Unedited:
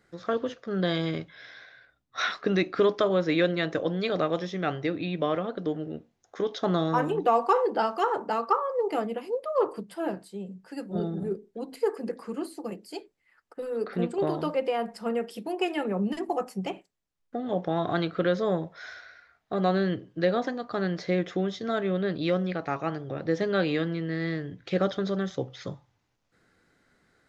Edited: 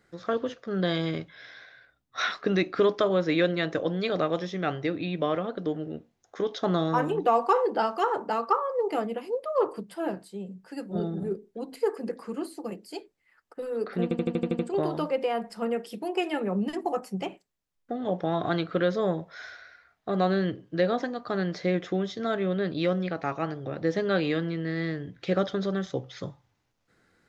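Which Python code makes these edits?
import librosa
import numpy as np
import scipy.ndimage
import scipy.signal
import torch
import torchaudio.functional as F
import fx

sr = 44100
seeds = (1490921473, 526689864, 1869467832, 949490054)

y = fx.edit(x, sr, fx.stutter(start_s=14.03, slice_s=0.08, count=8), tone=tone)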